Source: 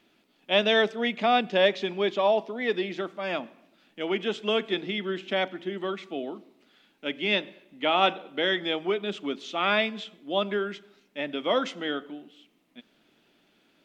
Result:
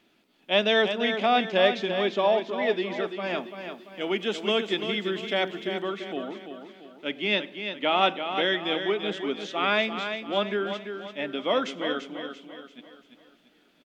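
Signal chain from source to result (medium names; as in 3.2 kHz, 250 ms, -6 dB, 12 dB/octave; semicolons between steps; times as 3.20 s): 3.38–5.80 s: treble shelf 6.4 kHz +10 dB; feedback delay 340 ms, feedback 43%, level -8 dB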